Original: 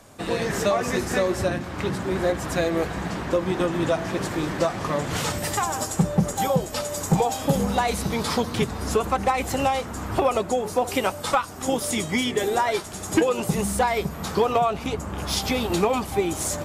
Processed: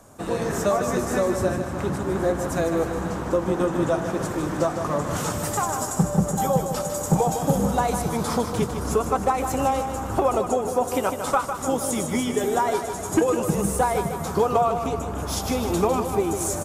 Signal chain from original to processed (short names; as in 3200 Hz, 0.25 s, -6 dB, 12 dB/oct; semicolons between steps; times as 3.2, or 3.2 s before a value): band shelf 3000 Hz -8 dB; feedback echo 0.153 s, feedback 58%, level -8 dB